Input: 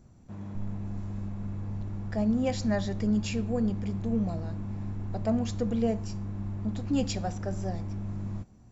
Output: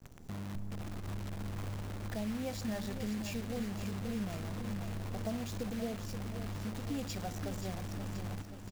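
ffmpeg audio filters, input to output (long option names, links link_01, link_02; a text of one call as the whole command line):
ffmpeg -i in.wav -filter_complex "[0:a]acompressor=threshold=-46dB:ratio=3,acrusher=bits=9:dc=4:mix=0:aa=0.000001,asplit=2[link_01][link_02];[link_02]aecho=0:1:528|1056|1584|2112|2640|3168|3696:0.355|0.202|0.115|0.0657|0.0375|0.0213|0.0122[link_03];[link_01][link_03]amix=inputs=2:normalize=0,volume=5dB" out.wav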